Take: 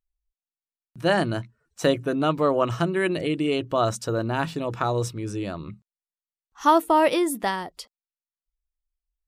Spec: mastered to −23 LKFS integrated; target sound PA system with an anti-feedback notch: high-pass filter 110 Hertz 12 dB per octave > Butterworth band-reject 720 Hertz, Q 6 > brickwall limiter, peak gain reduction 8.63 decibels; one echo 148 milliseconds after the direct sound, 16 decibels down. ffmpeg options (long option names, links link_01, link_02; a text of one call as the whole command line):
ffmpeg -i in.wav -af "highpass=110,asuperstop=centerf=720:order=8:qfactor=6,aecho=1:1:148:0.158,volume=4dB,alimiter=limit=-12dB:level=0:latency=1" out.wav